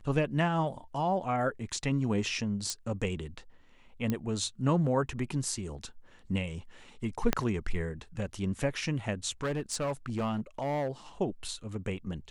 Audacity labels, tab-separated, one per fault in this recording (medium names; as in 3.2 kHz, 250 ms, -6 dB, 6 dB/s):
2.700000	2.700000	pop -18 dBFS
4.100000	4.100000	pop -17 dBFS
7.330000	7.330000	pop -10 dBFS
9.430000	10.880000	clipped -27.5 dBFS